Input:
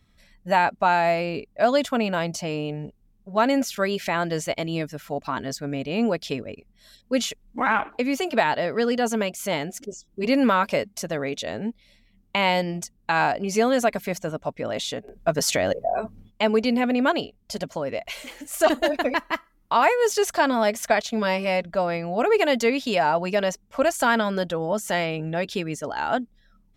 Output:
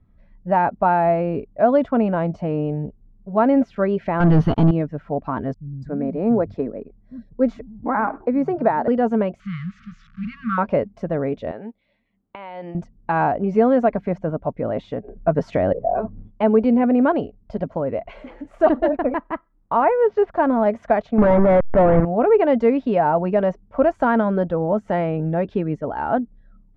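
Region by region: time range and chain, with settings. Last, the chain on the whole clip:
4.2–4.71 fixed phaser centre 2200 Hz, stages 6 + sample leveller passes 5
5.54–8.88 bell 3000 Hz -14.5 dB 0.54 oct + bands offset in time lows, highs 0.28 s, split 160 Hz
9.4–10.58 switching spikes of -17.5 dBFS + brick-wall FIR band-stop 220–1100 Hz + air absorption 170 m
11.51–12.75 HPF 980 Hz 6 dB/oct + resonant high shelf 5300 Hz -8.5 dB, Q 1.5 + compressor 12:1, threshold -29 dBFS
18.95–20.66 G.711 law mismatch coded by A + air absorption 100 m + careless resampling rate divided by 4×, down filtered, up hold
21.18–22.05 level-crossing sampler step -25 dBFS + brick-wall FIR low-pass 2300 Hz + sample leveller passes 3
whole clip: LPF 1200 Hz 12 dB/oct; tilt -1.5 dB/oct; AGC gain up to 3.5 dB

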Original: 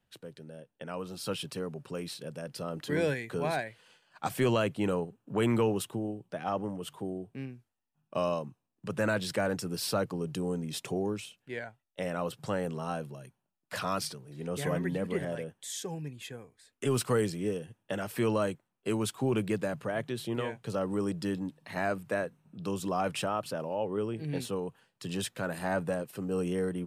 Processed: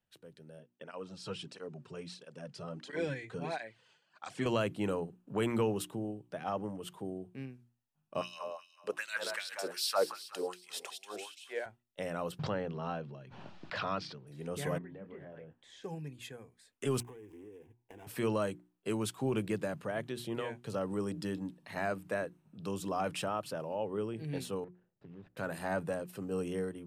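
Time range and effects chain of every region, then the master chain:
0.59–4.46 LPF 7900 Hz 24 dB/oct + tape flanging out of phase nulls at 1.5 Hz, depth 4.2 ms
8.21–11.66 thinning echo 0.185 s, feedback 48%, high-pass 790 Hz, level -8 dB + LFO high-pass sine 2.6 Hz 420–3900 Hz
12.39–14.27 LPF 4500 Hz 24 dB/oct + backwards sustainer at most 30 dB/s
14.78–15.84 LPF 2100 Hz + compressor 3:1, threshold -45 dBFS + doubler 26 ms -10.5 dB
17–18.07 median filter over 25 samples + fixed phaser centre 870 Hz, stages 8 + compressor 20:1, threshold -43 dBFS
24.64–25.37 median filter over 41 samples + LPF 2500 Hz + compressor 3:1, threshold -47 dBFS
whole clip: notches 60/120/180/240/300/360 Hz; AGC gain up to 5 dB; gain -8.5 dB

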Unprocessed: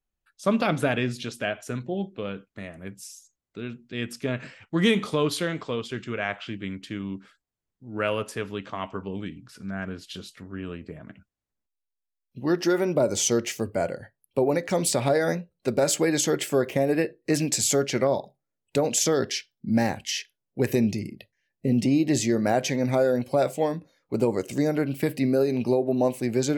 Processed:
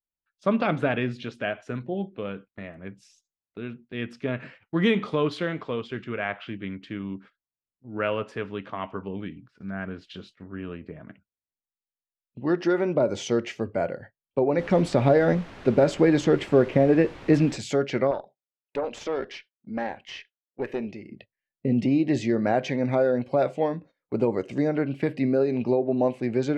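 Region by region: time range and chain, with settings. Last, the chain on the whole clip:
14.57–17.56 low shelf 480 Hz +7.5 dB + added noise pink -41 dBFS
18.11–21.1 tone controls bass -12 dB, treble -6 dB + tube stage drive 17 dB, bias 0.6
whole clip: gate -46 dBFS, range -13 dB; LPF 2800 Hz 12 dB/oct; low shelf 68 Hz -6 dB

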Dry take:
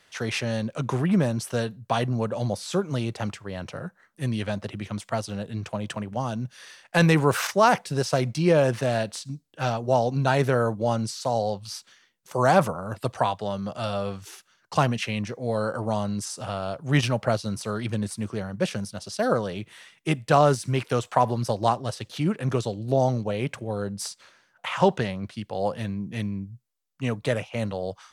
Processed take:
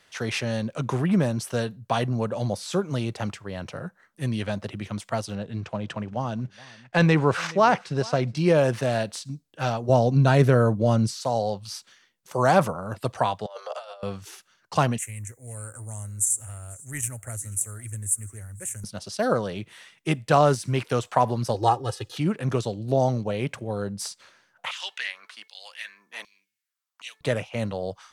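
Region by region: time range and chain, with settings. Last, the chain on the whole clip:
5.35–8.37 block floating point 7-bit + air absorption 95 m + echo 0.422 s -22.5 dB
9.89–11.16 low shelf 330 Hz +8 dB + notch 840 Hz, Q 8.7
13.46–14.03 steep high-pass 430 Hz 96 dB/oct + negative-ratio compressor -36 dBFS, ratio -0.5 + high shelf 8200 Hz -8 dB
14.98–18.84 EQ curve 100 Hz 0 dB, 170 Hz -23 dB, 270 Hz -16 dB, 580 Hz -21 dB, 1100 Hz -19 dB, 2000 Hz -7 dB, 3200 Hz -23 dB, 4900 Hz -26 dB, 7200 Hz +15 dB + echo 0.491 s -22 dB
21.54–22.17 comb 2.4 ms, depth 83% + dynamic EQ 4700 Hz, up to -4 dB, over -40 dBFS, Q 0.71 + notch 2200 Hz, Q 8.7
24.71–27.21 HPF 240 Hz + de-hum 438.4 Hz, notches 5 + LFO high-pass saw down 1.3 Hz 830–4100 Hz
whole clip: dry

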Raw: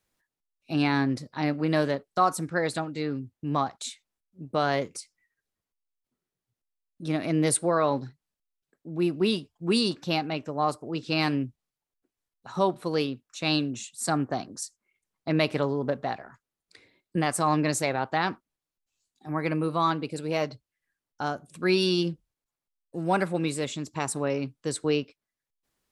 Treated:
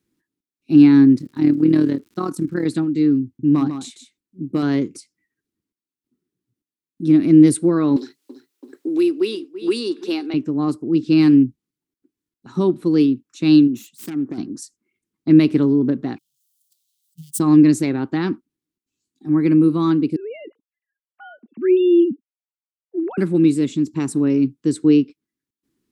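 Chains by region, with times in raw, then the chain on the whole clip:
1.16–2.65 AM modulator 38 Hz, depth 55% + crackle 150/s -43 dBFS
3.24–4.63 hard clip -17.5 dBFS + echo 0.149 s -8.5 dB
7.96–10.34 HPF 380 Hz 24 dB/oct + feedback echo 0.333 s, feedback 35%, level -19.5 dB + three-band squash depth 70%
13.67–14.38 self-modulated delay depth 0.28 ms + bell 69 Hz -6 dB 2.6 oct + compressor 10:1, threshold -32 dBFS
16.18–17.4 switching spikes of -18.5 dBFS + gate -22 dBFS, range -41 dB + Chebyshev band-stop 160–3100 Hz, order 4
20.16–23.18 sine-wave speech + compressor 2:1, threshold -27 dBFS
whole clip: HPF 180 Hz 6 dB/oct; resonant low shelf 440 Hz +12 dB, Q 3; gain -1 dB

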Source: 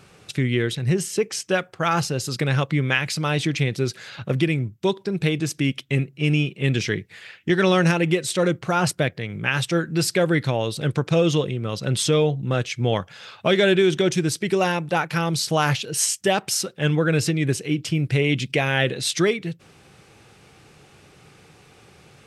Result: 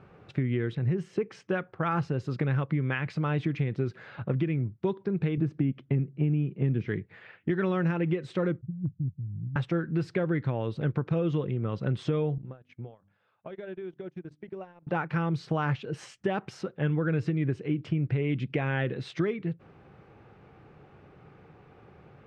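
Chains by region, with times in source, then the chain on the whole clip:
5.37–6.88 HPF 130 Hz + tilt -3 dB/oct
8.61–9.56 inverse Chebyshev low-pass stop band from 910 Hz, stop band 80 dB + hard clip -20.5 dBFS + Doppler distortion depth 0.37 ms
12.38–14.87 notches 50/100/150/200/250/300 Hz + compressor 12:1, threshold -32 dBFS + gate -36 dBFS, range -23 dB
whole clip: LPF 1400 Hz 12 dB/oct; dynamic EQ 650 Hz, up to -6 dB, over -35 dBFS, Q 1.3; compressor, threshold -22 dBFS; gain -1.5 dB

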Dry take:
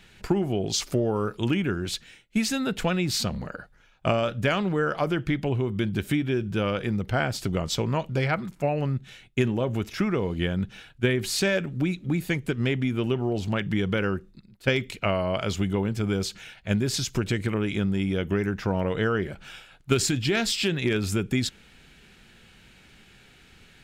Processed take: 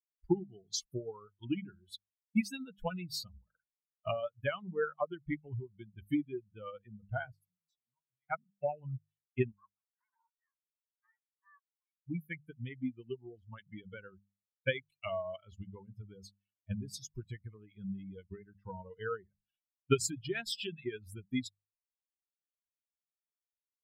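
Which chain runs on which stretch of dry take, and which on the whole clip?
7.32–8.3 HPF 150 Hz 24 dB/oct + bell 500 Hz -12.5 dB 2.9 oct + compressor 8:1, threshold -37 dBFS
9.52–12.07 minimum comb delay 0.43 ms + de-esser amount 95% + Butterworth band-pass 1300 Hz, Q 1.6
whole clip: per-bin expansion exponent 3; notches 50/100/150/200 Hz; upward expander 1.5:1, over -48 dBFS

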